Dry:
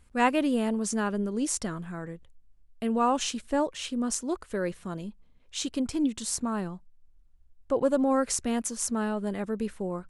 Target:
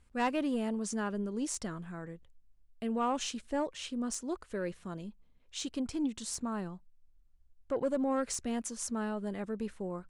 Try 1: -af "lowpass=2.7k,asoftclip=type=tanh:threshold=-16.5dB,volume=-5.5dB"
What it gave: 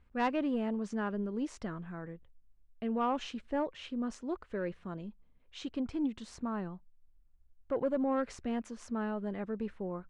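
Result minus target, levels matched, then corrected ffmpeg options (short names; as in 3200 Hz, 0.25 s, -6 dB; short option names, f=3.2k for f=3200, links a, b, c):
8000 Hz band -16.0 dB
-af "lowpass=9.4k,asoftclip=type=tanh:threshold=-16.5dB,volume=-5.5dB"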